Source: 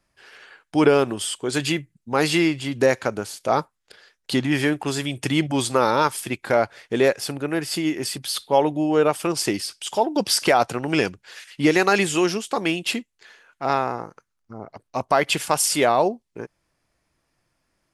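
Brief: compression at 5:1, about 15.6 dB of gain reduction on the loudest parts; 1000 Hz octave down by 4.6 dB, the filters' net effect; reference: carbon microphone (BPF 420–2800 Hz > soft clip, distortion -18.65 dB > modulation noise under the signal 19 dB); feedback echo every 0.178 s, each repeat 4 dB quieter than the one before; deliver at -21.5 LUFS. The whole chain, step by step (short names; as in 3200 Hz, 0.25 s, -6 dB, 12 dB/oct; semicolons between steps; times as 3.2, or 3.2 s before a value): bell 1000 Hz -6 dB; compressor 5:1, threshold -31 dBFS; BPF 420–2800 Hz; feedback echo 0.178 s, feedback 63%, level -4 dB; soft clip -26.5 dBFS; modulation noise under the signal 19 dB; gain +16.5 dB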